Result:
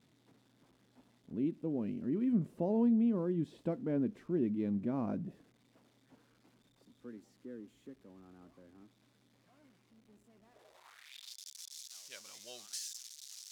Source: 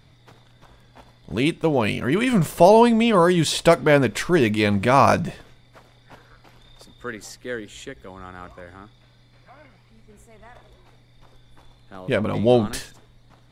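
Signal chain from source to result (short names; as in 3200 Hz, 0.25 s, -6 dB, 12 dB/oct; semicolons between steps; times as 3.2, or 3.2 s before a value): switching spikes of -20 dBFS; band-pass sweep 250 Hz -> 5700 Hz, 10.45–11.37; dynamic EQ 940 Hz, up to -4 dB, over -43 dBFS, Q 0.87; gain -8.5 dB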